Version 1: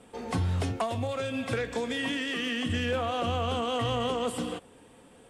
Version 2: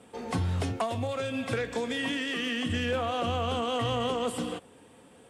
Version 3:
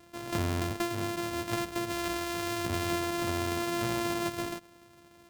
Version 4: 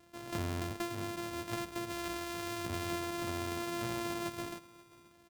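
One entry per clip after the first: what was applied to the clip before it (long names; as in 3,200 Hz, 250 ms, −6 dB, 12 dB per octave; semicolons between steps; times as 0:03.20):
high-pass filter 66 Hz
samples sorted by size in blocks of 128 samples; level −2 dB
single-tap delay 532 ms −20.5 dB; level −6 dB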